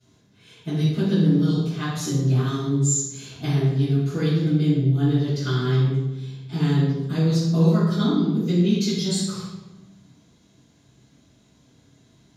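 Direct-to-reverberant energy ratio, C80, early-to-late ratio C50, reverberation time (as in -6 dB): -16.5 dB, 2.5 dB, -1.0 dB, 1.1 s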